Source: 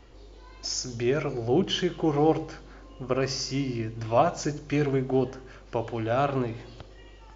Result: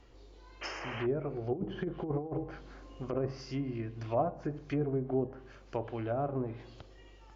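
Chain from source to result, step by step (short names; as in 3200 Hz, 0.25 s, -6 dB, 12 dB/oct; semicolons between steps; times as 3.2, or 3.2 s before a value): 0.61–1.07 painted sound noise 310–3200 Hz -34 dBFS; treble ducked by the level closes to 760 Hz, closed at -22 dBFS; 1.53–3.31 negative-ratio compressor -26 dBFS, ratio -0.5; gain -6.5 dB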